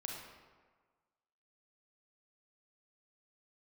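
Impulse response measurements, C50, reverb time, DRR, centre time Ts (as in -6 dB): 1.0 dB, 1.5 s, -1.0 dB, 69 ms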